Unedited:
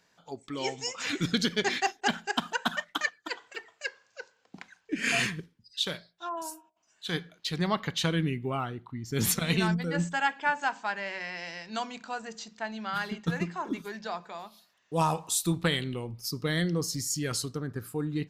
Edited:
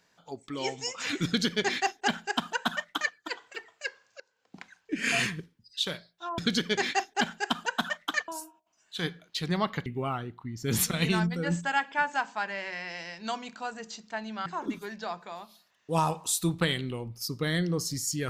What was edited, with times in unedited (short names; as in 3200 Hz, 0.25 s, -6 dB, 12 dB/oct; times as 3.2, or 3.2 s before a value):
1.25–3.15 copy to 6.38
4.2–4.61 fade in, from -22.5 dB
7.96–8.34 cut
12.94–13.49 cut